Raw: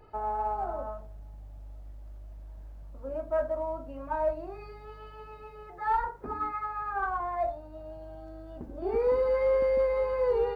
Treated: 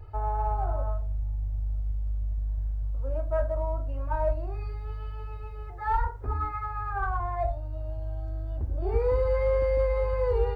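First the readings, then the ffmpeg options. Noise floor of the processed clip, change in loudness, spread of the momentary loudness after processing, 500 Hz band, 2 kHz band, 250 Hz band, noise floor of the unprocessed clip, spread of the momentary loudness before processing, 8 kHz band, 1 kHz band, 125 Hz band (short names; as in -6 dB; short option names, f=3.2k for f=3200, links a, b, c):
-38 dBFS, -0.5 dB, 11 LU, -1.0 dB, 0.0 dB, -3.0 dB, -47 dBFS, 22 LU, n/a, -0.5 dB, +15.5 dB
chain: -af "lowshelf=f=130:t=q:w=3:g=13"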